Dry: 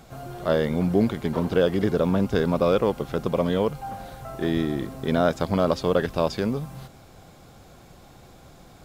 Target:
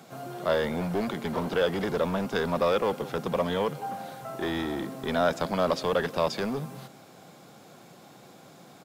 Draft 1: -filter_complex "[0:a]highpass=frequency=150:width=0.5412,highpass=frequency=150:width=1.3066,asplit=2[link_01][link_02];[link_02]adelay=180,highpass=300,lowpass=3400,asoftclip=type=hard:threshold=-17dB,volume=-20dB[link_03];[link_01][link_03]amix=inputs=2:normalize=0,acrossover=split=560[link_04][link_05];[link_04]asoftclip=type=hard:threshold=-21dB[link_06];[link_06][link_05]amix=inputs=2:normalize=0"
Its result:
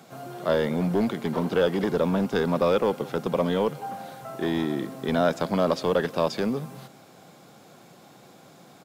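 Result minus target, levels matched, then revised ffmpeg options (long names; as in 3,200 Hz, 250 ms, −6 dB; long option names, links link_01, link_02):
hard clipping: distortion −7 dB
-filter_complex "[0:a]highpass=frequency=150:width=0.5412,highpass=frequency=150:width=1.3066,asplit=2[link_01][link_02];[link_02]adelay=180,highpass=300,lowpass=3400,asoftclip=type=hard:threshold=-17dB,volume=-20dB[link_03];[link_01][link_03]amix=inputs=2:normalize=0,acrossover=split=560[link_04][link_05];[link_04]asoftclip=type=hard:threshold=-29.5dB[link_06];[link_06][link_05]amix=inputs=2:normalize=0"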